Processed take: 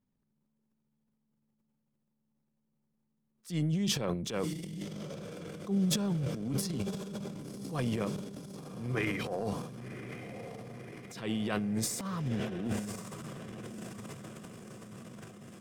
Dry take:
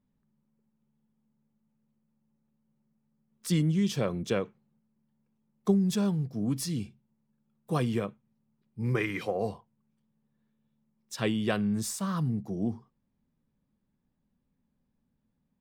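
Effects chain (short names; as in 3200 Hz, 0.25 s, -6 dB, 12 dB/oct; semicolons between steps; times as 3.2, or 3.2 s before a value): diffused feedback echo 1.094 s, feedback 65%, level -10 dB; transient shaper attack -10 dB, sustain +11 dB; gain -4.5 dB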